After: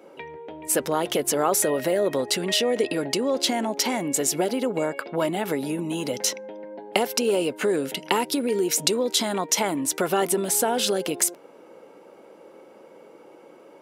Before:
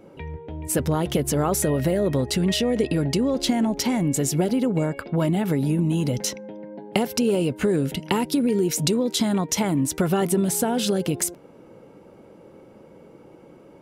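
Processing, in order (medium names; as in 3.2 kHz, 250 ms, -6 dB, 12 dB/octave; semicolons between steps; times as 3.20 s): high-pass 410 Hz 12 dB/octave; trim +3 dB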